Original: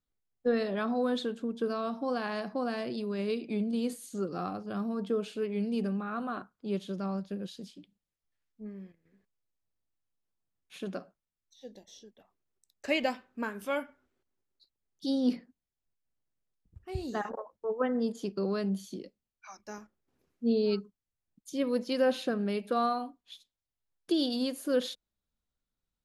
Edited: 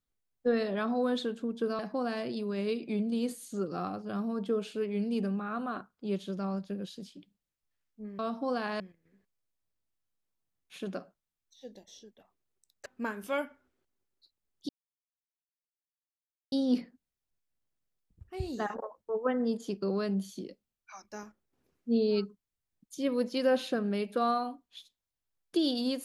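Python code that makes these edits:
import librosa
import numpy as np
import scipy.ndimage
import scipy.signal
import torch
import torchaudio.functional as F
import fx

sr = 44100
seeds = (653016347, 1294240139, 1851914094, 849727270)

y = fx.edit(x, sr, fx.move(start_s=1.79, length_s=0.61, to_s=8.8),
    fx.cut(start_s=12.86, length_s=0.38),
    fx.insert_silence(at_s=15.07, length_s=1.83), tone=tone)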